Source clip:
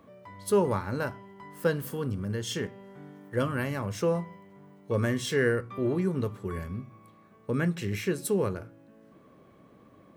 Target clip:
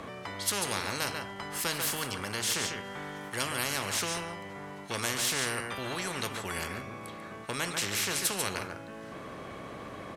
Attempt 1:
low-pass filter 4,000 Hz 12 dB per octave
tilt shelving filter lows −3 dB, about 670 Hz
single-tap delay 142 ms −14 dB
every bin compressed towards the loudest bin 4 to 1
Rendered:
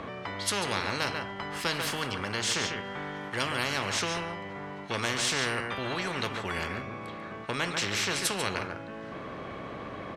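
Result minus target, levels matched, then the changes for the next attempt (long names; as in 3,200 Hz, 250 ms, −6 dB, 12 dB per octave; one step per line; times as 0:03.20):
8,000 Hz band −3.5 dB
change: low-pass filter 10,000 Hz 12 dB per octave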